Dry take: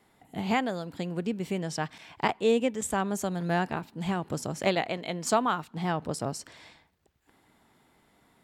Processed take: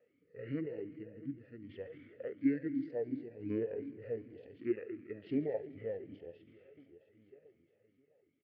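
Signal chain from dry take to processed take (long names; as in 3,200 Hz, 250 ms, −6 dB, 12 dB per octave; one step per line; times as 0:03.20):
harmonic and percussive parts rebalanced percussive −16 dB
on a send: repeating echo 664 ms, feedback 53%, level −18 dB
on the sum: shaped tremolo saw down 0.59 Hz, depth 65%
high-frequency loss of the air 120 metres
echo machine with several playback heads 72 ms, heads all three, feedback 57%, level −19 dB
pitch shifter −8.5 semitones
formant filter swept between two vowels e-i 2.7 Hz
level +8.5 dB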